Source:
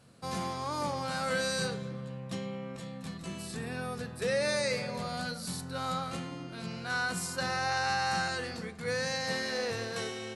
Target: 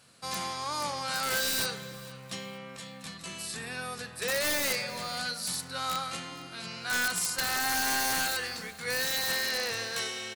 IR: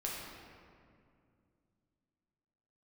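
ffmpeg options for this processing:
-af "tiltshelf=f=860:g=-7.5,aeval=exprs='(mod(11.2*val(0)+1,2)-1)/11.2':c=same,aecho=1:1:460|920|1380:0.1|0.035|0.0123"

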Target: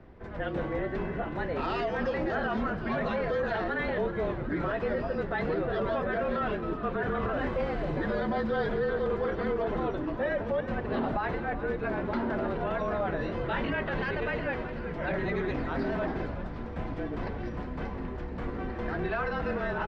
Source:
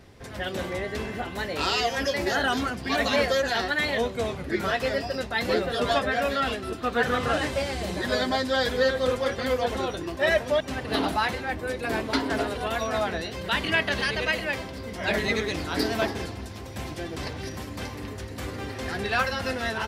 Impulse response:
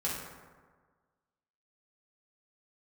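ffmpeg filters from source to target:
-filter_complex "[0:a]lowpass=1500,alimiter=limit=0.075:level=0:latency=1:release=21,afreqshift=-35,asettb=1/sr,asplit=3[s0][s1][s2];[s0]atrim=end=13.174[s3];[s1]atrim=start=13.17:end=13.67,asetpts=PTS-STARTPTS,afade=t=in:d=0.004:c=qsin,afade=t=out:st=0.496:d=0.004:c=qsin,asplit=2[s4][s5];[s5]adelay=22,volume=0.75[s6];[s4][s6]amix=inputs=2:normalize=0,atrim=end_sample=22050[s7];[s2]atrim=start=13.666[s8];[s3][s7]acrossfade=d=0.004:c1=hsin:c2=qsin[s9];[s9][s8]acrossfade=d=0.004:c1=qsin:c2=hsin,asplit=9[s10][s11][s12][s13][s14][s15][s16][s17][s18];[s11]adelay=372,afreqshift=-79,volume=0.251[s19];[s12]adelay=744,afreqshift=-158,volume=0.16[s20];[s13]adelay=1116,afreqshift=-237,volume=0.102[s21];[s14]adelay=1488,afreqshift=-316,volume=0.0661[s22];[s15]adelay=1860,afreqshift=-395,volume=0.0422[s23];[s16]adelay=2232,afreqshift=-474,volume=0.0269[s24];[s17]adelay=2604,afreqshift=-553,volume=0.0172[s25];[s18]adelay=2976,afreqshift=-632,volume=0.0111[s26];[s10][s19][s20][s21][s22][s23][s24][s25][s26]amix=inputs=9:normalize=0"

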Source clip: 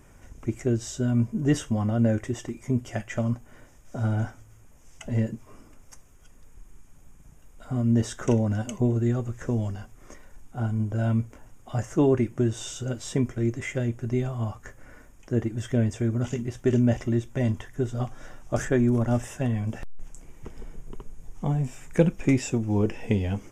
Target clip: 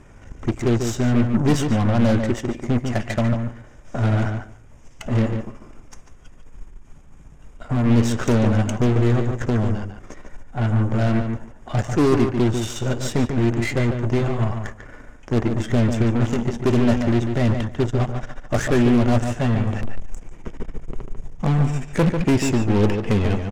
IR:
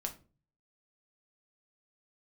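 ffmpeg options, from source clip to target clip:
-filter_complex "[0:a]volume=10,asoftclip=hard,volume=0.1,aeval=exprs='0.106*(cos(1*acos(clip(val(0)/0.106,-1,1)))-cos(1*PI/2))+0.0133*(cos(8*acos(clip(val(0)/0.106,-1,1)))-cos(8*PI/2))':c=same,asplit=2[s0][s1];[s1]adelay=145,lowpass=f=3700:p=1,volume=0.501,asplit=2[s2][s3];[s3]adelay=145,lowpass=f=3700:p=1,volume=0.15,asplit=2[s4][s5];[s5]adelay=145,lowpass=f=3700:p=1,volume=0.15[s6];[s0][s2][s4][s6]amix=inputs=4:normalize=0,adynamicsmooth=sensitivity=7.5:basefreq=6100,volume=2.11"

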